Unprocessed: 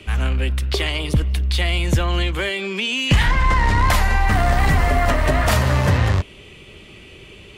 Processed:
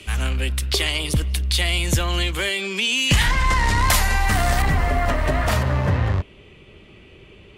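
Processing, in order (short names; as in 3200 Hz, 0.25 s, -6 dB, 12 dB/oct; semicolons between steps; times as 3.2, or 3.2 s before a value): bell 11000 Hz +12 dB 2.5 oct, from 4.62 s -2.5 dB, from 5.63 s -12 dB; gain -3 dB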